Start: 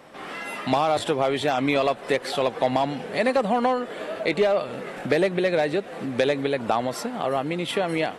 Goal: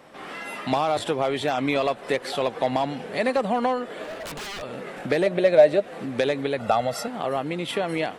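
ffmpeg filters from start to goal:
-filter_complex "[0:a]asplit=3[s0][s1][s2];[s0]afade=t=out:st=4.03:d=0.02[s3];[s1]aeval=exprs='0.0398*(abs(mod(val(0)/0.0398+3,4)-2)-1)':c=same,afade=t=in:st=4.03:d=0.02,afade=t=out:st=4.61:d=0.02[s4];[s2]afade=t=in:st=4.61:d=0.02[s5];[s3][s4][s5]amix=inputs=3:normalize=0,asettb=1/sr,asplit=3[s6][s7][s8];[s6]atrim=end=5.264[s9];[s7]atrim=start=5.26:end=5.82,asetpts=PTS-STARTPTS,afade=t=in:d=0.004:c=qsin,afade=t=out:st=0.556:d=0.004:c=qsin,equalizer=f=610:t=o:w=0.25:g=14[s10];[s8]atrim=start=5.816[s11];[s9][s10]acrossfade=d=0.004:c1=hsin:c2=qsin[s12];[s12][s11]acrossfade=d=0.004:c1=qsin:c2=hsin,asettb=1/sr,asplit=3[s13][s14][s15];[s13]atrim=end=6.584[s16];[s14]atrim=start=6.58:end=7.08,asetpts=PTS-STARTPTS,afade=t=in:d=0.004:c=qsin,afade=t=out:st=0.496:d=0.004:c=qsin,aecho=1:1:1.5:0.77,atrim=end_sample=22050[s17];[s15]atrim=start=7.076[s18];[s16][s17]acrossfade=d=0.004:c1=hsin:c2=qsin[s19];[s19][s18]acrossfade=d=0.004:c1=qsin:c2=hsin,volume=0.841"

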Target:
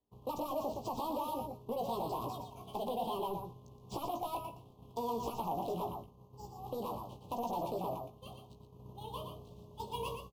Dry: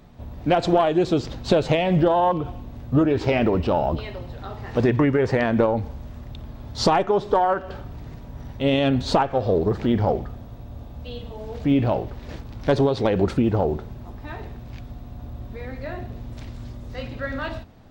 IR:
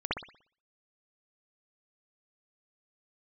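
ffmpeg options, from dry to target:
-filter_complex "[0:a]agate=range=0.0224:threshold=0.0562:ratio=3:detection=peak,acrossover=split=170|1800|3900[s0][s1][s2][s3];[s0]acompressor=threshold=0.02:ratio=4[s4];[s1]acompressor=threshold=0.0447:ratio=4[s5];[s2]acompressor=threshold=0.00316:ratio=4[s6];[s3]acompressor=threshold=0.00251:ratio=4[s7];[s4][s5][s6][s7]amix=inputs=4:normalize=0,highshelf=f=2400:g=-8.5,acompressor=threshold=0.0251:ratio=2,asplit=2[s8][s9];[s9]aecho=0:1:205:0.473[s10];[s8][s10]amix=inputs=2:normalize=0,acrusher=samples=6:mix=1:aa=0.000001,asoftclip=type=tanh:threshold=0.0422,asuperstop=centerf=1000:order=8:qfactor=0.88,equalizer=f=1100:t=o:w=2.8:g=11,asplit=2[s11][s12];[s12]adelay=30,volume=0.501[s13];[s11][s13]amix=inputs=2:normalize=0,asetrate=76440,aresample=44100,volume=0.447"

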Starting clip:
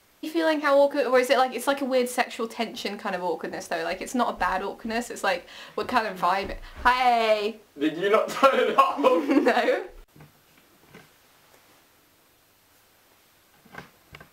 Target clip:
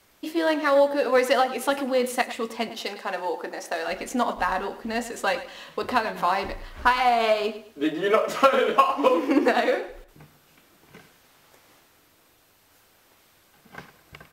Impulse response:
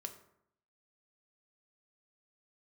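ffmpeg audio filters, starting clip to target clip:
-filter_complex "[0:a]asettb=1/sr,asplit=3[s0][s1][s2];[s0]atrim=end=2.694[s3];[s1]atrim=start=2.69:end=3.88,asetpts=PTS-STARTPTS,afade=t=in:d=0.004:c=qsin,afade=t=out:st=1.186:d=0.004:c=qsin,highpass=330[s4];[s2]atrim=start=3.876[s5];[s3][s4]acrossfade=d=0.004:c1=hsin:c2=qsin[s6];[s6][s5]acrossfade=d=0.004:c1=qsin:c2=hsin,aecho=1:1:104|208|312:0.2|0.0638|0.0204"

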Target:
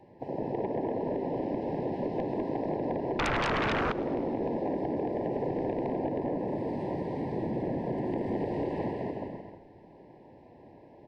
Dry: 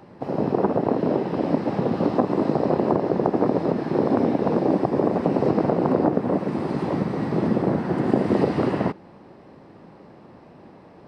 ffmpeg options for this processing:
-filter_complex "[0:a]highshelf=f=2700:g=-11.5,asplit=2[s0][s1];[s1]aecho=0:1:200|360|488|590.4|672.3:0.631|0.398|0.251|0.158|0.1[s2];[s0][s2]amix=inputs=2:normalize=0,asoftclip=type=tanh:threshold=0.2,asuperstop=centerf=1300:order=12:qfactor=2,equalizer=f=190:t=o:w=0.9:g=-6.5,asettb=1/sr,asplit=3[s3][s4][s5];[s3]atrim=end=3.194[s6];[s4]atrim=start=3.19:end=3.92,asetpts=PTS-STARTPTS,afade=t=in:d=0.004:c=qsin,afade=t=out:st=0.726:d=0.004:c=qsin,aeval=exprs='0.211*sin(PI/2*5.01*val(0)/0.211)':c=same[s7];[s5]atrim=start=3.916[s8];[s6][s7]acrossfade=d=0.004:c1=hsin:c2=qsin[s9];[s9][s8]acrossfade=d=0.004:c1=qsin:c2=hsin,asplit=2[s10][s11];[s11]asplit=5[s12][s13][s14][s15][s16];[s12]adelay=104,afreqshift=-60,volume=0.0891[s17];[s13]adelay=208,afreqshift=-120,volume=0.055[s18];[s14]adelay=312,afreqshift=-180,volume=0.0343[s19];[s15]adelay=416,afreqshift=-240,volume=0.0211[s20];[s16]adelay=520,afreqshift=-300,volume=0.0132[s21];[s17][s18][s19][s20][s21]amix=inputs=5:normalize=0[s22];[s10][s22]amix=inputs=2:normalize=0,acompressor=threshold=0.0891:ratio=6,volume=0.501"

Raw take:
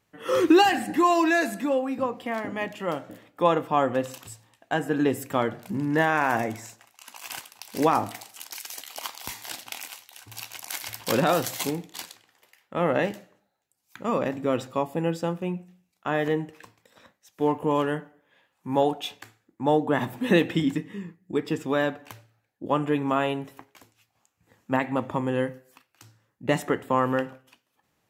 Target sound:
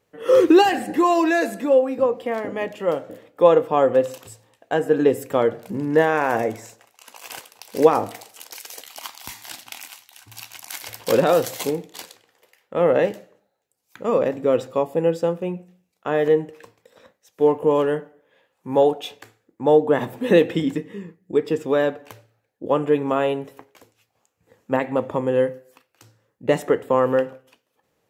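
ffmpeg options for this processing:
-af "asetnsamples=n=441:p=0,asendcmd='8.87 equalizer g -5;10.81 equalizer g 10.5',equalizer=f=480:t=o:w=0.65:g=12"

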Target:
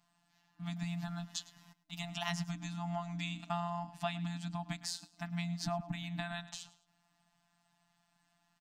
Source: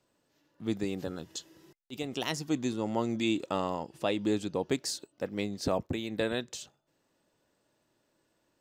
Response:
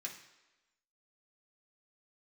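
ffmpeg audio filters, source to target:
-af "highshelf=f=8400:g=-7.5,aecho=1:1:106|212:0.119|0.0238,acompressor=threshold=0.0282:ratio=5,afftfilt=real='hypot(re,im)*cos(PI*b)':imag='0':win_size=1024:overlap=0.75,afftfilt=real='re*(1-between(b*sr/4096,310,650))':imag='im*(1-between(b*sr/4096,310,650))':win_size=4096:overlap=0.75,adynamicequalizer=threshold=0.00141:dfrequency=2100:dqfactor=0.7:tfrequency=2100:tqfactor=0.7:attack=5:release=100:ratio=0.375:range=3:mode=cutabove:tftype=highshelf,volume=1.88"

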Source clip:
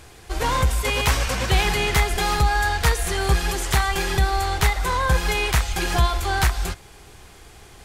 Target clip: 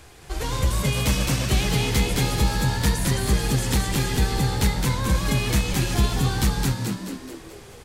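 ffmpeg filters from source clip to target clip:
-filter_complex "[0:a]acrossover=split=410|3000[s0][s1][s2];[s1]acompressor=threshold=0.0158:ratio=2.5[s3];[s0][s3][s2]amix=inputs=3:normalize=0,asplit=8[s4][s5][s6][s7][s8][s9][s10][s11];[s5]adelay=215,afreqshift=70,volume=0.708[s12];[s6]adelay=430,afreqshift=140,volume=0.367[s13];[s7]adelay=645,afreqshift=210,volume=0.191[s14];[s8]adelay=860,afreqshift=280,volume=0.1[s15];[s9]adelay=1075,afreqshift=350,volume=0.0519[s16];[s10]adelay=1290,afreqshift=420,volume=0.0269[s17];[s11]adelay=1505,afreqshift=490,volume=0.014[s18];[s4][s12][s13][s14][s15][s16][s17][s18]amix=inputs=8:normalize=0,volume=0.794"

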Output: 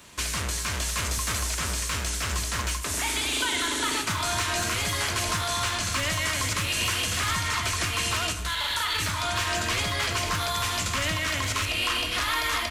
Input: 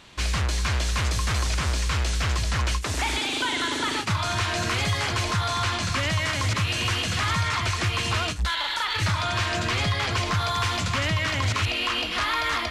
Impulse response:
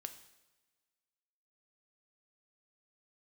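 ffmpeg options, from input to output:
-filter_complex "[0:a]highpass=42,aemphasis=mode=production:type=50fm,bandreject=f=790:w=12,asubboost=boost=4.5:cutoff=54,alimiter=limit=0.141:level=0:latency=1:release=409,acrossover=split=150|4200[s0][s1][s2];[s0]asoftclip=type=tanh:threshold=0.0237[s3];[s1]adynamicsmooth=sensitivity=6.5:basefreq=3100[s4];[s3][s4][s2]amix=inputs=3:normalize=0,asplit=2[s5][s6];[s6]adelay=641.4,volume=0.224,highshelf=f=4000:g=-14.4[s7];[s5][s7]amix=inputs=2:normalize=0[s8];[1:a]atrim=start_sample=2205[s9];[s8][s9]afir=irnorm=-1:irlink=0,volume=1.68"

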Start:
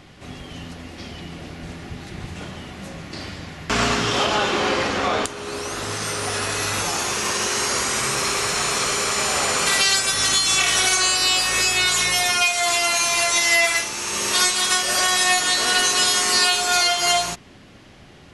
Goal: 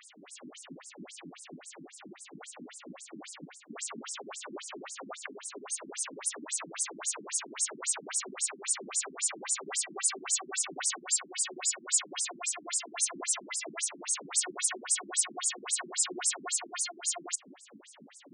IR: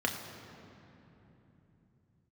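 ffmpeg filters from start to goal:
-af "asoftclip=type=hard:threshold=0.168,areverse,acompressor=threshold=0.0158:ratio=4,areverse,aexciter=amount=11.4:drive=5.9:freq=7500,aeval=exprs='0.794*(cos(1*acos(clip(val(0)/0.794,-1,1)))-cos(1*PI/2))+0.178*(cos(6*acos(clip(val(0)/0.794,-1,1)))-cos(6*PI/2))':c=same,afftfilt=real='re*between(b*sr/1024,230*pow(7100/230,0.5+0.5*sin(2*PI*3.7*pts/sr))/1.41,230*pow(7100/230,0.5+0.5*sin(2*PI*3.7*pts/sr))*1.41)':imag='im*between(b*sr/1024,230*pow(7100/230,0.5+0.5*sin(2*PI*3.7*pts/sr))/1.41,230*pow(7100/230,0.5+0.5*sin(2*PI*3.7*pts/sr))*1.41)':win_size=1024:overlap=0.75"

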